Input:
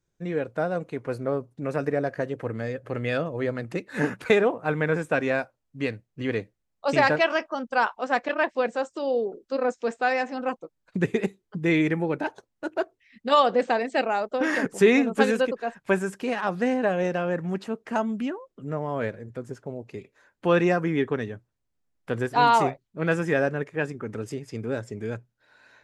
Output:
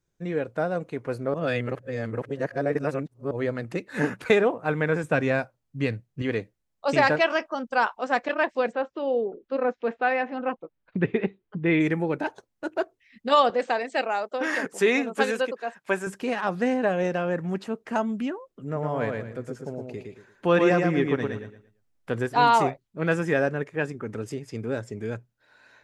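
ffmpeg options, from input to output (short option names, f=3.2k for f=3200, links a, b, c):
-filter_complex "[0:a]asettb=1/sr,asplit=3[a][b][c];[a]atrim=end=5.034[d];[b]atrim=start=5.03:end=6.22,asetpts=PTS-STARTPTS,afade=t=in:d=0.004:c=qsin,afade=t=out:st=1.186:d=0.004:c=qsin,equalizer=f=130:t=o:w=1.2:g=7.5[e];[c]atrim=start=6.216[f];[d][e]acrossfade=d=0.004:c1=hsin:c2=qsin[g];[g][f]acrossfade=d=0.004:c1=qsin:c2=hsin,asplit=3[h][i][j];[h]afade=t=out:st=8.71:d=0.02[k];[i]lowpass=f=3.3k:w=0.5412,lowpass=f=3.3k:w=1.3066,afade=t=in:st=8.71:d=0.02,afade=t=out:st=11.79:d=0.02[l];[j]afade=t=in:st=11.79:d=0.02[m];[k][l][m]amix=inputs=3:normalize=0,asettb=1/sr,asplit=3[n][o][p];[n]atrim=end=13.504[q];[o]atrim=start=13.5:end=16.07,asetpts=PTS-STARTPTS,afade=t=in:d=0.004:c=qsin,afade=t=out:st=2.566:d=0.004:c=qsin,highpass=f=470:p=1[r];[p]atrim=start=16.066[s];[q][r]acrossfade=d=0.004:c1=hsin:c2=qsin[t];[t][s]acrossfade=d=0.004:c1=qsin:c2=hsin,asettb=1/sr,asplit=3[u][v][w];[u]atrim=end=18.644[x];[v]atrim=start=18.64:end=22.12,asetpts=PTS-STARTPTS,afade=t=in:d=0.004:c=qsin,afade=t=out:st=3.476:d=0.004:c=qsin,aecho=1:1:114|228|342|456:0.631|0.177|0.0495|0.0139,atrim=end_sample=153468[y];[w]atrim=start=22.116[z];[x][y]acrossfade=d=0.004:c1=hsin:c2=qsin[aa];[aa][z]acrossfade=d=0.004:c1=qsin:c2=hsin,asplit=3[ab][ac][ad];[ab]atrim=end=1.342[ae];[ac]atrim=start=1.338:end=3.312,asetpts=PTS-STARTPTS,areverse[af];[ad]atrim=start=3.308[ag];[ae][af]acrossfade=d=0.004:c1=hsin:c2=hsin[ah];[ah][ag]acrossfade=d=0.004:c1=hsin:c2=hsin"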